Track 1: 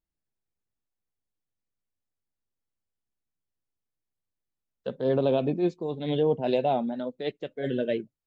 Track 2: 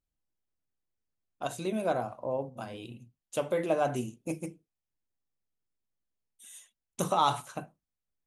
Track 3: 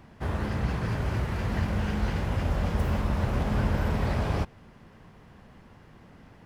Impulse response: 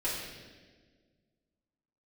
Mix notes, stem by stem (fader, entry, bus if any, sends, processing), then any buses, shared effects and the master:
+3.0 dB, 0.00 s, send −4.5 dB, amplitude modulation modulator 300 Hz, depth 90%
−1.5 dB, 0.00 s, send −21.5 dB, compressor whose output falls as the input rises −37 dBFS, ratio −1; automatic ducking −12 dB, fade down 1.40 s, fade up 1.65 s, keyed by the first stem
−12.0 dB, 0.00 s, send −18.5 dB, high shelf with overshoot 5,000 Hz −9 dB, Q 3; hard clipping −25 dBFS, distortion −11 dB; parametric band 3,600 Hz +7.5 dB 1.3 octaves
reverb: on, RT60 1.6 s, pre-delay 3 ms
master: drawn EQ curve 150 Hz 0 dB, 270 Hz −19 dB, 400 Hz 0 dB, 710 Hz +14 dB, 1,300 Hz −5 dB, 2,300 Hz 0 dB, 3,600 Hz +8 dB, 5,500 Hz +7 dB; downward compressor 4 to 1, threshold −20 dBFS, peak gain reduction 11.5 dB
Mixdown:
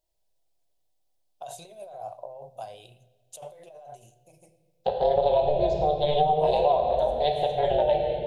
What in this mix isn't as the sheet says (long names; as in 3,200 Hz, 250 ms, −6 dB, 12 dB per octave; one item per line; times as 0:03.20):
stem 2 −1.5 dB → −13.0 dB
stem 3: muted